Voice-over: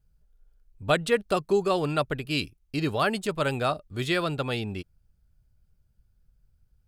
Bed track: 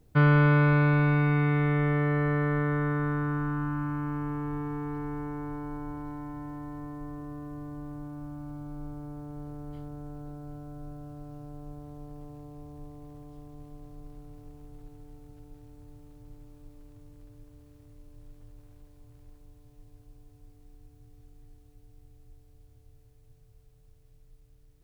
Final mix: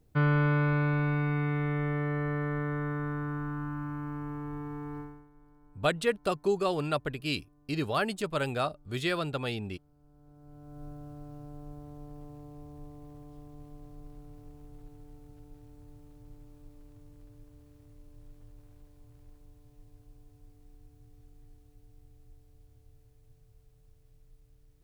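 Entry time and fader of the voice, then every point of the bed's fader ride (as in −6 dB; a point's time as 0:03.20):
4.95 s, −4.0 dB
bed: 0:05.00 −5 dB
0:05.30 −25 dB
0:09.93 −25 dB
0:10.83 −2 dB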